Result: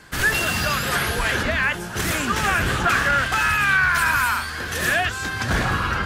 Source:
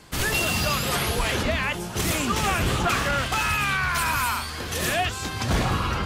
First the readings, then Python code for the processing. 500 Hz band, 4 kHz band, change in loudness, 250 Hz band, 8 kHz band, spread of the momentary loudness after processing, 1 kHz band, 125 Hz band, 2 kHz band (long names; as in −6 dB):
+0.5 dB, +0.5 dB, +3.5 dB, 0.0 dB, 0.0 dB, 7 LU, +3.0 dB, 0.0 dB, +7.5 dB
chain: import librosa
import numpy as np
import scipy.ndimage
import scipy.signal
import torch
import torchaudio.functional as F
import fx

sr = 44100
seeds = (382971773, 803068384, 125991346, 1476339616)

y = fx.peak_eq(x, sr, hz=1600.0, db=11.0, octaves=0.5)